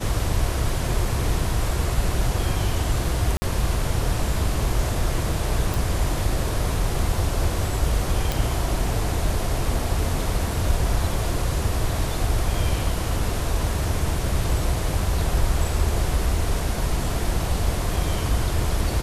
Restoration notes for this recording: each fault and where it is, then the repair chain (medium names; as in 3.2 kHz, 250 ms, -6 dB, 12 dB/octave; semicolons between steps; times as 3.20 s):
3.37–3.42 s: dropout 50 ms
5.74 s: pop
8.32 s: pop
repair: de-click; interpolate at 3.37 s, 50 ms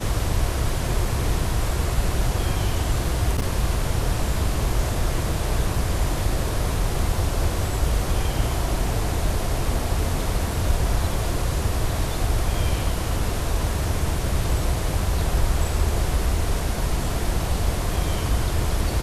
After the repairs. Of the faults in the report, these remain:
nothing left